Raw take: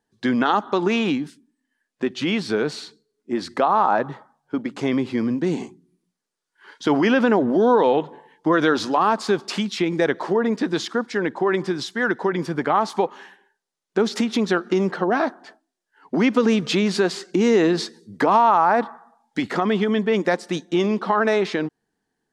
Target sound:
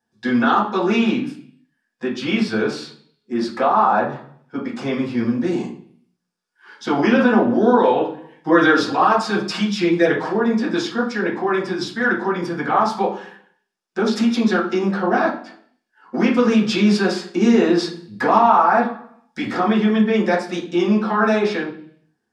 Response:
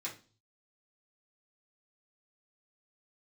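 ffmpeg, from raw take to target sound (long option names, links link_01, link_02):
-filter_complex "[0:a]asettb=1/sr,asplit=3[link_01][link_02][link_03];[link_01]atrim=end=7.994[link_04];[link_02]atrim=start=7.99:end=10.29,asetpts=PTS-STARTPTS,afade=type=in:duration=0.004:curve=qsin,afade=type=out:start_time=2.296:duration=0.004:curve=qsin,aecho=1:1:6.4:0.65,atrim=end_sample=101430[link_05];[link_03]atrim=start=10.286[link_06];[link_04][link_05]acrossfade=duration=0.004:curve1=hsin:curve2=qsin[link_07];[link_07][link_06]acrossfade=duration=0.004:curve1=qsin:curve2=hsin[link_08];[1:a]atrim=start_sample=2205,asetrate=29547,aresample=44100[link_09];[link_08][link_09]afir=irnorm=-1:irlink=0,volume=-1dB"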